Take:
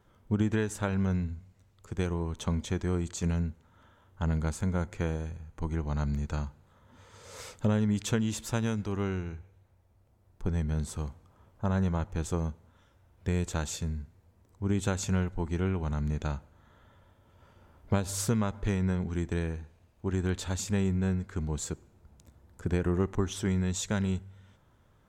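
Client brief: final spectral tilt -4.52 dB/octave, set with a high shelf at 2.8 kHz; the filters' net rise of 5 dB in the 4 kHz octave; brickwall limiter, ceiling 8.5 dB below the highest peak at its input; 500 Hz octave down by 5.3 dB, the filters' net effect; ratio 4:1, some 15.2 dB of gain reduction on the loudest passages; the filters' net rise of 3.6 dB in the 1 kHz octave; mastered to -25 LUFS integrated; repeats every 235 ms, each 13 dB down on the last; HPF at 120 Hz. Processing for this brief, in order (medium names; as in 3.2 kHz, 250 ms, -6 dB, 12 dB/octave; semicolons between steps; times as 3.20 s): high-pass 120 Hz; peaking EQ 500 Hz -8.5 dB; peaking EQ 1 kHz +7 dB; treble shelf 2.8 kHz -4 dB; peaking EQ 4 kHz +9 dB; compression 4:1, threshold -44 dBFS; peak limiter -35.5 dBFS; feedback delay 235 ms, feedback 22%, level -13 dB; trim +23 dB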